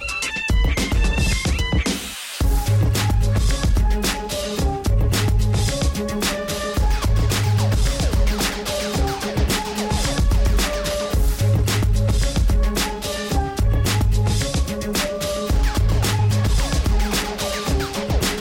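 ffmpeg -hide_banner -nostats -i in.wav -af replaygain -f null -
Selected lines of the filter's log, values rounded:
track_gain = +4.7 dB
track_peak = 0.252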